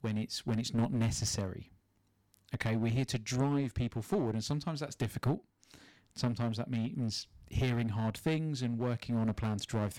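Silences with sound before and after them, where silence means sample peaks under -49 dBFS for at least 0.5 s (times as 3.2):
1.63–2.34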